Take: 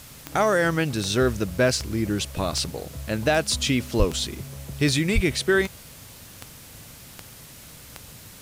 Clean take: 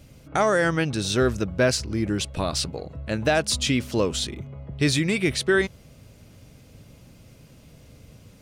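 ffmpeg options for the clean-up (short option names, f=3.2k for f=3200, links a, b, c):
-filter_complex "[0:a]adeclick=t=4,asplit=3[a][b][c];[a]afade=t=out:st=3.98:d=0.02[d];[b]highpass=f=140:w=0.5412,highpass=f=140:w=1.3066,afade=t=in:st=3.98:d=0.02,afade=t=out:st=4.1:d=0.02[e];[c]afade=t=in:st=4.1:d=0.02[f];[d][e][f]amix=inputs=3:normalize=0,asplit=3[g][h][i];[g]afade=t=out:st=5.14:d=0.02[j];[h]highpass=f=140:w=0.5412,highpass=f=140:w=1.3066,afade=t=in:st=5.14:d=0.02,afade=t=out:st=5.26:d=0.02[k];[i]afade=t=in:st=5.26:d=0.02[l];[j][k][l]amix=inputs=3:normalize=0,afwtdn=0.0056"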